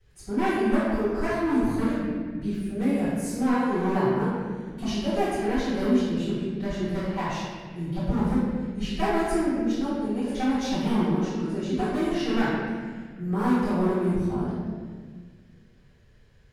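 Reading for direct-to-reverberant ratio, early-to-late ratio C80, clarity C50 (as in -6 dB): -18.5 dB, 0.0 dB, -3.5 dB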